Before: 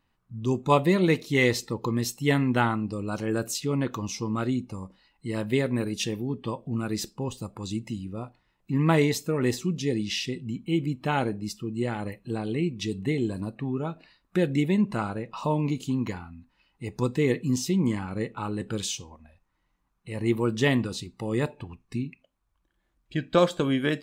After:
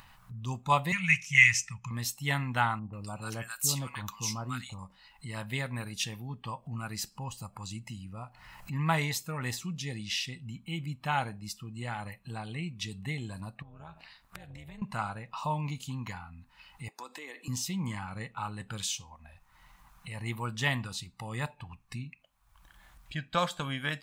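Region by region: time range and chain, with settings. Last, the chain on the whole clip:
0.92–1.91 s: FFT filter 180 Hz 0 dB, 310 Hz -27 dB, 650 Hz -24 dB, 2.5 kHz +14 dB, 4 kHz -16 dB, 5.9 kHz +11 dB, 8.5 kHz +2 dB, 15 kHz -15 dB + tape noise reduction on one side only decoder only
2.79–4.79 s: treble shelf 5.9 kHz +9.5 dB + bands offset in time lows, highs 140 ms, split 1.1 kHz
6.44–8.73 s: band-stop 3.6 kHz, Q 7.6 + upward compressor, threshold -39 dBFS
13.62–14.82 s: AM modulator 230 Hz, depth 70% + compression 4:1, threshold -43 dBFS
16.88–17.48 s: Chebyshev high-pass 290 Hz, order 4 + compression 4:1, threshold -32 dBFS
whole clip: FFT filter 150 Hz 0 dB, 380 Hz -16 dB, 800 Hz +4 dB, 6 kHz +3 dB, 12 kHz +6 dB; upward compressor, threshold -33 dBFS; trim -5.5 dB

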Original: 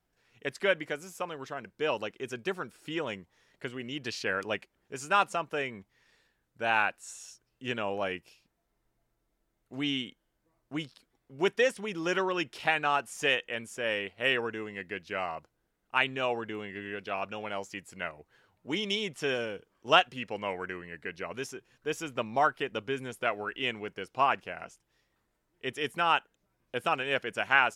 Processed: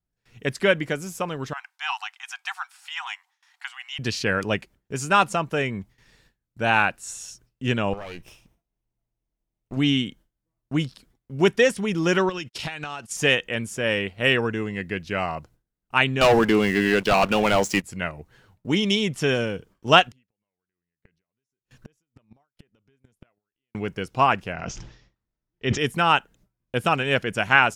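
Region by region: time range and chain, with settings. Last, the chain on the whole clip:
1.53–3.99 s: brick-wall FIR high-pass 720 Hz + treble shelf 11 kHz -7.5 dB
7.93–9.77 s: comb filter that takes the minimum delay 0.35 ms + peaking EQ 1 kHz +6.5 dB 2.1 oct + compression 12:1, threshold -39 dBFS
12.29–13.17 s: gate -46 dBFS, range -46 dB + peaking EQ 5.2 kHz +9 dB 2 oct + compression 8:1, threshold -36 dBFS
16.21–17.84 s: high-pass 200 Hz + waveshaping leveller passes 3
20.07–23.75 s: compression 4:1, threshold -44 dBFS + inverted gate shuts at -39 dBFS, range -29 dB
24.52–25.78 s: steep low-pass 6.5 kHz 48 dB/octave + decay stretcher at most 78 dB/s
whole clip: gate with hold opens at -58 dBFS; tone controls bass +12 dB, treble +3 dB; trim +6.5 dB

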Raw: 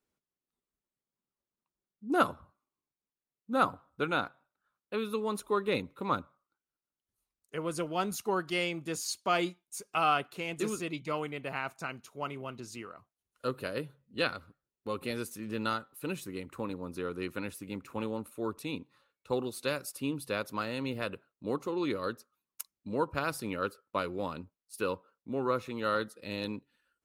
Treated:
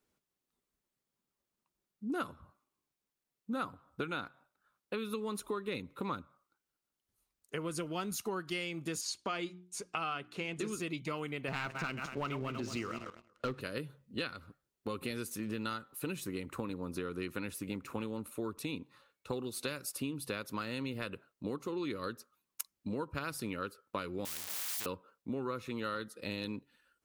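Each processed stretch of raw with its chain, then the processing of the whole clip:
9.01–10.73 s: distance through air 54 m + hum notches 60/120/180/240/300/360 Hz
11.48–13.61 s: backward echo that repeats 116 ms, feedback 42%, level -9 dB + distance through air 110 m + waveshaping leveller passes 2
24.25–24.86 s: zero-crossing glitches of -34 dBFS + tilt EQ +2.5 dB/octave + spectrum-flattening compressor 10:1
whole clip: dynamic bell 700 Hz, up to -7 dB, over -45 dBFS, Q 1.2; compression, threshold -39 dBFS; trim +4.5 dB

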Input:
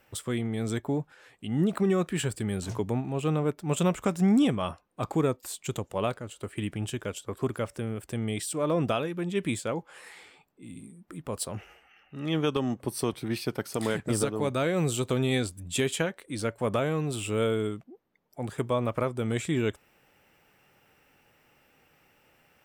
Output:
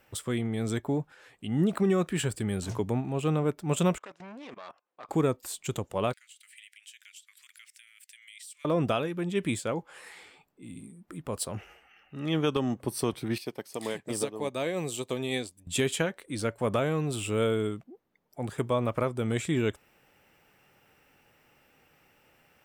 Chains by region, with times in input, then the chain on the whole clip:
3.98–5.09 s: self-modulated delay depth 0.22 ms + band-pass 510–3900 Hz + level held to a coarse grid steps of 22 dB
6.13–8.65 s: Chebyshev high-pass 2 kHz, order 4 + compression 2:1, threshold -52 dBFS
13.38–15.67 s: high-pass 330 Hz 6 dB/octave + peaking EQ 1.4 kHz -12 dB 0.26 oct + upward expansion, over -43 dBFS
whole clip: none

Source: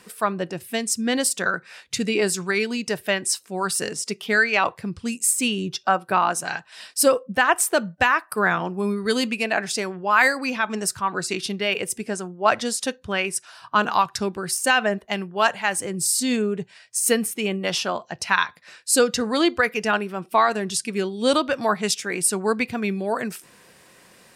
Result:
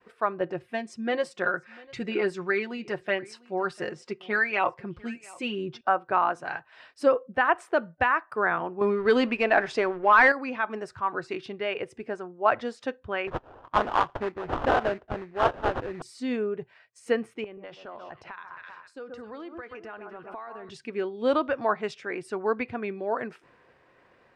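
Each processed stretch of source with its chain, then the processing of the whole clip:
0.40–5.81 s: comb 5.6 ms, depth 66% + delay 697 ms -23 dB
8.81–10.32 s: bass shelf 87 Hz -9 dB + waveshaping leveller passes 2
13.27–16.02 s: sample-rate reducer 2.2 kHz, jitter 20% + tape noise reduction on one side only decoder only
17.44–20.69 s: echo whose repeats swap between lows and highs 129 ms, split 1.5 kHz, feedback 53%, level -10.5 dB + compression 10:1, threshold -32 dBFS
whole clip: low-pass 1.8 kHz 12 dB/octave; expander -52 dBFS; peaking EQ 190 Hz -11.5 dB 0.49 oct; trim -3 dB

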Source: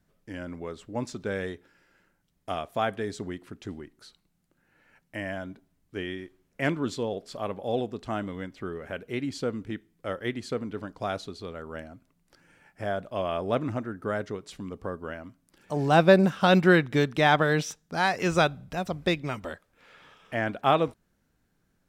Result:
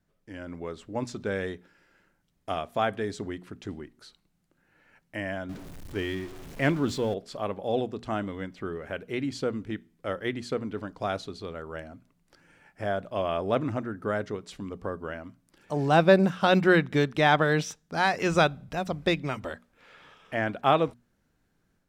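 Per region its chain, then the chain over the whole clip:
5.49–7.14 s: jump at every zero crossing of -40.5 dBFS + bass shelf 130 Hz +6 dB
whole clip: treble shelf 8.8 kHz -5 dB; hum notches 60/120/180/240 Hz; level rider gain up to 5 dB; trim -4 dB

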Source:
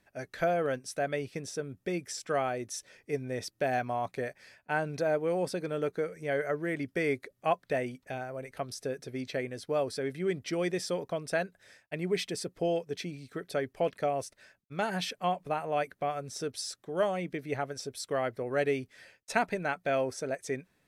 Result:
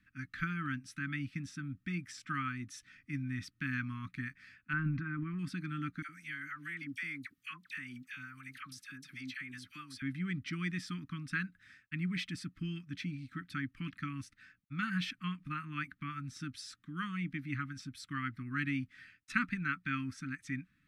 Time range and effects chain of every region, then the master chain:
4.73–5.39 s: low-pass 1.7 kHz + transient shaper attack +1 dB, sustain +7 dB
6.02–10.02 s: tilt EQ +3 dB/octave + phase dispersion lows, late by 69 ms, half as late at 1.1 kHz + compression 2:1, threshold -40 dBFS
whole clip: Chebyshev band-stop 290–1200 Hz, order 4; tone controls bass +1 dB, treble -14 dB; trim +1 dB

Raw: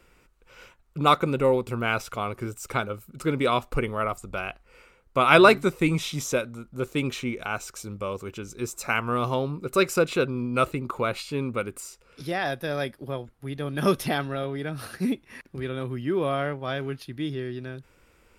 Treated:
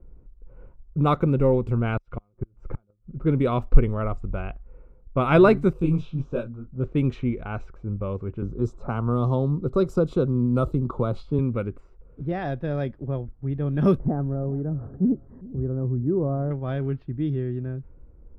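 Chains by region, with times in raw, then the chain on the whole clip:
1.97–3.18 s: comb 5.7 ms, depth 30% + inverted gate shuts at -22 dBFS, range -39 dB
5.73–6.84 s: Butterworth band-stop 2 kHz, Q 2.8 + detune thickener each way 58 cents
8.42–11.39 s: high-order bell 2.1 kHz -14 dB 1 oct + three bands compressed up and down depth 40%
13.97–16.51 s: Gaussian low-pass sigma 8 samples + feedback delay 404 ms, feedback 28%, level -20 dB
whole clip: level-controlled noise filter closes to 720 Hz, open at -21.5 dBFS; tilt EQ -4.5 dB/octave; trim -4.5 dB

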